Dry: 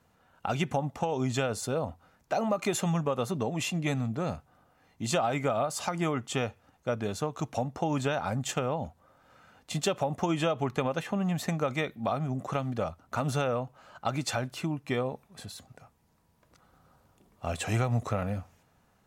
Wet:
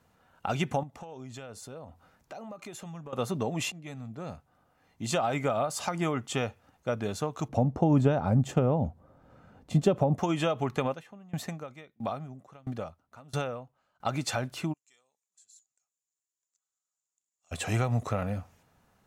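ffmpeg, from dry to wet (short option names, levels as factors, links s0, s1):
-filter_complex "[0:a]asettb=1/sr,asplit=3[s0][s1][s2];[s0]atrim=end=0.834[s3];[s1]atrim=start=0.83:end=3.13,asetpts=PTS-STARTPTS,afade=t=in:d=0.004:c=qsin,afade=t=out:st=2.296:d=0.004:c=qsin,acompressor=threshold=0.00447:ratio=2.5:attack=3.2:release=140:knee=1:detection=peak[s4];[s2]atrim=start=3.126[s5];[s3][s4]acrossfade=d=0.004:c1=hsin:c2=qsin[s6];[s6][s5]acrossfade=d=0.004:c1=qsin:c2=hsin,asettb=1/sr,asplit=3[s7][s8][s9];[s7]atrim=end=7.484[s10];[s8]atrim=start=7.48:end=10.18,asetpts=PTS-STARTPTS,afade=t=in:d=0.004:c=qsin,afade=t=out:st=2.696:d=0.004:c=qsin,tiltshelf=f=840:g=9.5[s11];[s9]atrim=start=10.176[s12];[s10][s11]acrossfade=d=0.004:c1=hsin:c2=qsin[s13];[s13][s12]acrossfade=d=0.004:c1=qsin:c2=hsin,asplit=3[s14][s15][s16];[s14]afade=t=out:st=10.93:d=0.02[s17];[s15]aeval=exprs='val(0)*pow(10,-26*if(lt(mod(1.5*n/s,1),2*abs(1.5)/1000),1-mod(1.5*n/s,1)/(2*abs(1.5)/1000),(mod(1.5*n/s,1)-2*abs(1.5)/1000)/(1-2*abs(1.5)/1000))/20)':c=same,afade=t=in:st=10.93:d=0.02,afade=t=out:st=14.05:d=0.02[s18];[s16]afade=t=in:st=14.05:d=0.02[s19];[s17][s18][s19]amix=inputs=3:normalize=0,asplit=3[s20][s21][s22];[s20]afade=t=out:st=14.72:d=0.02[s23];[s21]bandpass=f=7100:t=q:w=10,afade=t=in:st=14.72:d=0.02,afade=t=out:st=17.51:d=0.02[s24];[s22]afade=t=in:st=17.51:d=0.02[s25];[s23][s24][s25]amix=inputs=3:normalize=0,asplit=2[s26][s27];[s26]atrim=end=3.72,asetpts=PTS-STARTPTS,afade=t=out:st=3.716:d=0.004:c=hsin:silence=0.141254[s28];[s27]atrim=start=3.72,asetpts=PTS-STARTPTS,afade=t=in:d=1.6:silence=0.141254[s29];[s28][s29]concat=n=2:v=0:a=1"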